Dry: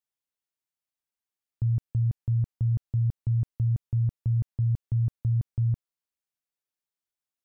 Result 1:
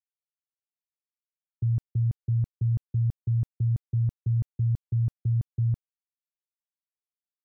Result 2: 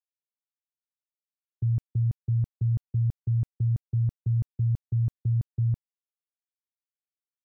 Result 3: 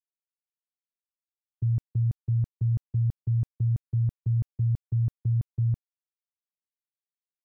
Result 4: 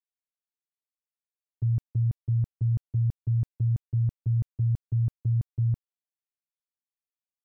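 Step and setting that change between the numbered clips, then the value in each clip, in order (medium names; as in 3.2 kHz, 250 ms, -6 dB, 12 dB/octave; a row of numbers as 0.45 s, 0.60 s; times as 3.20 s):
gate, range: -59 dB, -39 dB, -25 dB, -13 dB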